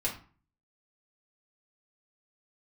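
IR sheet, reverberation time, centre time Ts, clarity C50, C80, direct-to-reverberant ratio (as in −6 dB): 0.40 s, 19 ms, 9.0 dB, 14.0 dB, −5.5 dB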